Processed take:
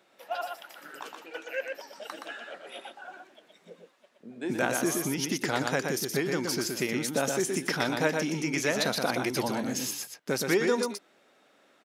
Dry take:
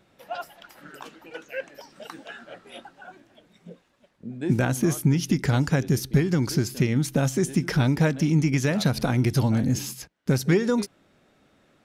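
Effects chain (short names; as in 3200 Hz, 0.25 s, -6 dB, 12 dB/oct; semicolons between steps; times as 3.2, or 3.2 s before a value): HPF 400 Hz 12 dB/oct; on a send: echo 0.121 s -4.5 dB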